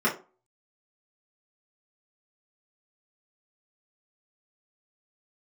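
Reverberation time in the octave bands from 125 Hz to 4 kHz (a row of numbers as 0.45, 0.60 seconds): 0.30, 0.35, 0.35, 0.35, 0.25, 0.20 seconds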